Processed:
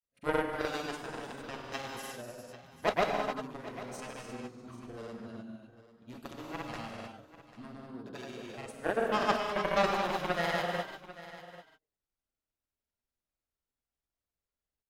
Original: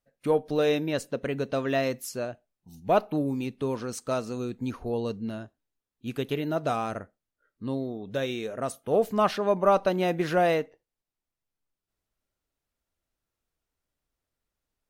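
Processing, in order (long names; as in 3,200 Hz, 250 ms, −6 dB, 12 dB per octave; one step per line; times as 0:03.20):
harmonic generator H 7 −13 dB, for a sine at −9 dBFS
reverb whose tail is shaped and stops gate 360 ms flat, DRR 0.5 dB
granular cloud, pitch spread up and down by 0 semitones
on a send: single-tap delay 793 ms −16 dB
on the sum: level −5.5 dB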